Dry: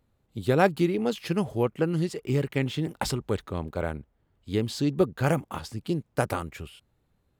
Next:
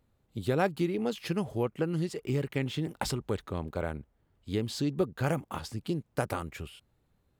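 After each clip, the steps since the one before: compressor 1.5:1, threshold -31 dBFS, peak gain reduction 6 dB; gain -1 dB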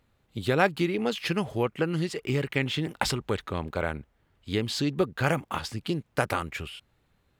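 bell 2300 Hz +8 dB 2.5 oct; gain +2 dB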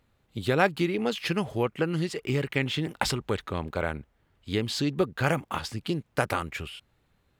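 nothing audible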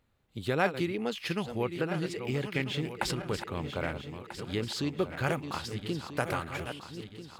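regenerating reverse delay 0.645 s, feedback 65%, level -9 dB; gain -5 dB

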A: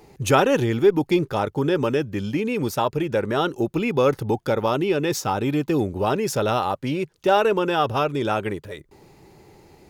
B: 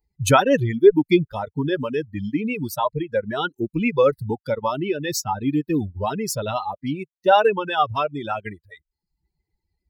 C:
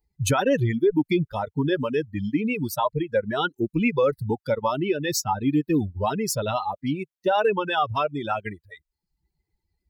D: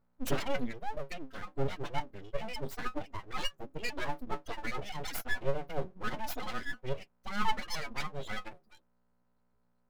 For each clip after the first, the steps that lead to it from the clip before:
per-bin expansion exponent 2; reverb removal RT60 0.62 s; gain +6 dB
limiter -13 dBFS, peak gain reduction 11 dB
buzz 60 Hz, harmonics 23, -59 dBFS -6 dB/oct; metallic resonator 130 Hz, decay 0.22 s, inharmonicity 0.03; full-wave rectifier

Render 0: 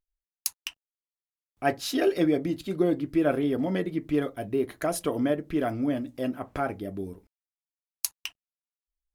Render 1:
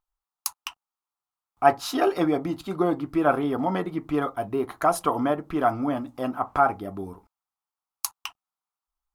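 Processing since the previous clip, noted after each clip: band shelf 1000 Hz +14.5 dB 1.1 oct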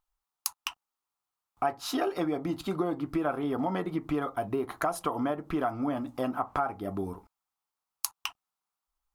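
compressor 5:1, threshold -29 dBFS, peak gain reduction 16 dB; gain +2 dB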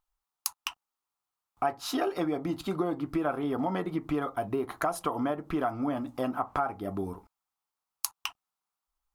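nothing audible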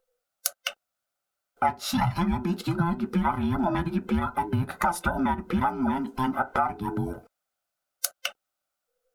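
band inversion scrambler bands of 500 Hz; gain +4.5 dB

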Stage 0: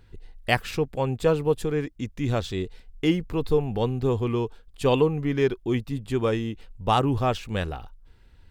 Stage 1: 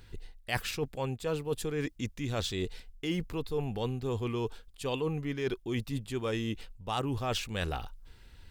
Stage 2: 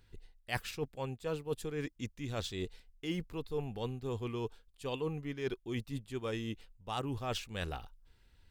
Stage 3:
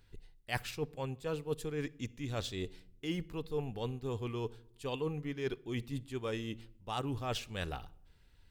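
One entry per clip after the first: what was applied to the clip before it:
high shelf 2200 Hz +8.5 dB; reverse; compressor 6:1, threshold -30 dBFS, peak gain reduction 16 dB; reverse
upward expander 1.5:1, over -44 dBFS; gain -3 dB
shoebox room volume 2100 m³, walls furnished, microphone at 0.33 m

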